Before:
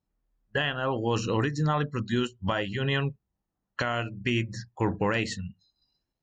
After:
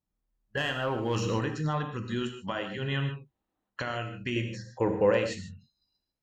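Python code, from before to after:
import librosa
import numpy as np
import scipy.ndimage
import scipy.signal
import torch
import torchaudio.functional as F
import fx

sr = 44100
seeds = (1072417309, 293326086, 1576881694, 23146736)

y = fx.leveller(x, sr, passes=1, at=(0.57, 1.39))
y = fx.highpass(y, sr, hz=170.0, slope=12, at=(2.32, 2.78))
y = fx.spec_box(y, sr, start_s=3.26, length_s=0.44, low_hz=230.0, high_hz=4200.0, gain_db=9)
y = fx.peak_eq(y, sr, hz=510.0, db=13.5, octaves=0.68, at=(4.36, 5.19))
y = fx.rev_gated(y, sr, seeds[0], gate_ms=170, shape='flat', drr_db=5.5)
y = y * librosa.db_to_amplitude(-5.5)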